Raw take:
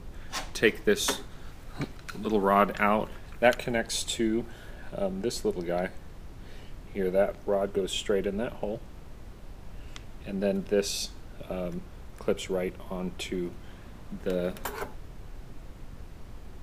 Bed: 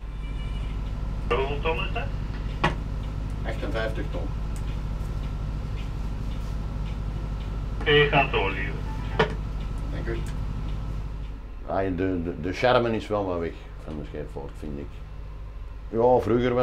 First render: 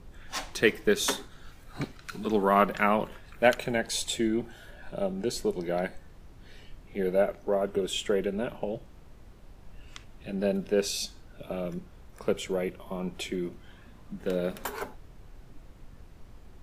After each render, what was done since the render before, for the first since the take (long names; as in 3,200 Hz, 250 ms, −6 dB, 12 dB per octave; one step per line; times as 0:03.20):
noise reduction from a noise print 6 dB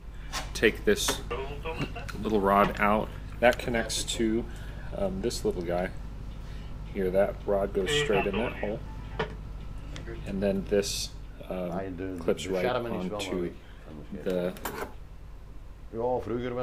mix in bed −9.5 dB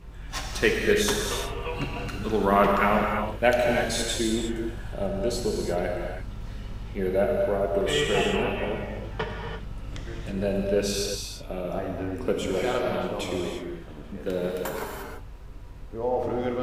reverb whose tail is shaped and stops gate 370 ms flat, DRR 0 dB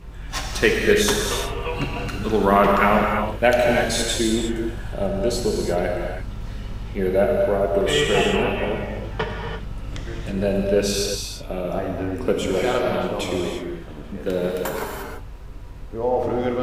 level +5 dB
brickwall limiter −3 dBFS, peak gain reduction 2 dB